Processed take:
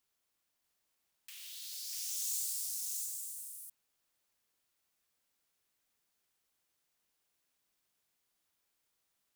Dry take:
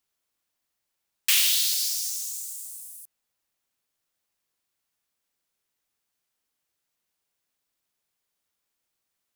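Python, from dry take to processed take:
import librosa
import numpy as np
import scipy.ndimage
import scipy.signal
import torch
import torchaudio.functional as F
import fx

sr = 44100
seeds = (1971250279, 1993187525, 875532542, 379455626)

y = fx.over_compress(x, sr, threshold_db=-34.0, ratio=-1.0)
y = y + 10.0 ** (-3.5 / 20.0) * np.pad(y, (int(644 * sr / 1000.0), 0))[:len(y)]
y = y * librosa.db_to_amplitude(-8.0)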